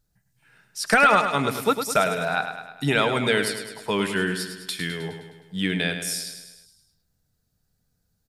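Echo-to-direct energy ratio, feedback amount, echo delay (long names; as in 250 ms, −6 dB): −7.0 dB, 56%, 104 ms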